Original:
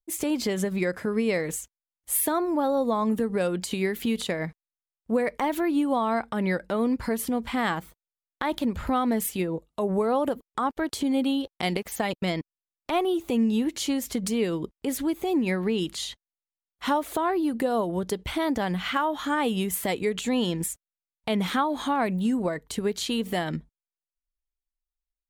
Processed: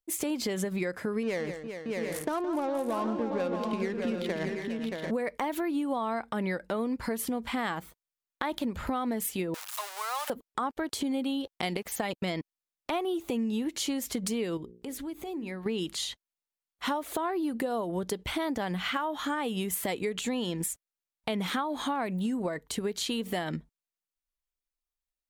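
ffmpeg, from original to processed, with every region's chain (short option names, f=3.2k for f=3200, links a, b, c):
-filter_complex "[0:a]asettb=1/sr,asplit=3[a][b][c];[a]atrim=end=1.234[d];[b]atrim=start=1.23:end=5.11,asetpts=PTS-STARTPTS,afade=t=in:d=0.004:c=qsin,afade=t=out:st=3.876:d=0.004:c=qsin,adynamicsmooth=sensitivity=4:basefreq=730,aecho=1:1:167|406|626|740|780:0.251|0.211|0.447|0.335|0.224,atrim=end_sample=171108[e];[c]atrim=start=5.106[f];[d][e]acrossfade=d=0.004:c1=hsin:c2=qsin[g];[g][f]acrossfade=d=0.004:c1=qsin:c2=hsin,asettb=1/sr,asplit=3[h][i][j];[h]atrim=end=9.544[k];[i]atrim=start=9.54:end=10.3,asetpts=PTS-STARTPTS,afade=t=in:d=0.004:c=qsin,afade=t=out:st=0.756:d=0.004:c=qsin,aeval=exprs='val(0)+0.5*0.0266*sgn(val(0))':c=same,highpass=f=960:w=0.5412,highpass=f=960:w=1.3066,highshelf=f=4.1k:g=8[l];[j]atrim=start=10.296[m];[k][l]acrossfade=d=0.004:c1=hsin:c2=qsin[n];[n][m]acrossfade=d=0.004:c1=qsin:c2=hsin,asettb=1/sr,asplit=3[o][p][q];[o]atrim=end=14.574[r];[p]atrim=start=14.57:end=15.66,asetpts=PTS-STARTPTS,afade=t=in:d=0.004:c=qsin,afade=t=out:st=1.086:d=0.004:c=qsin,lowshelf=f=120:g=9.5,bandreject=f=60:t=h:w=6,bandreject=f=120:t=h:w=6,bandreject=f=180:t=h:w=6,bandreject=f=240:t=h:w=6,bandreject=f=300:t=h:w=6,bandreject=f=360:t=h:w=6,bandreject=f=420:t=h:w=6,bandreject=f=480:t=h:w=6,bandreject=f=540:t=h:w=6,acompressor=threshold=-42dB:ratio=2:attack=3.2:release=140:knee=1:detection=peak[s];[q]atrim=start=15.656[t];[r][s]acrossfade=d=0.004:c1=hsin:c2=qsin[u];[u][t]acrossfade=d=0.004:c1=qsin:c2=hsin,lowshelf=f=140:g=-5.5,acompressor=threshold=-28dB:ratio=4"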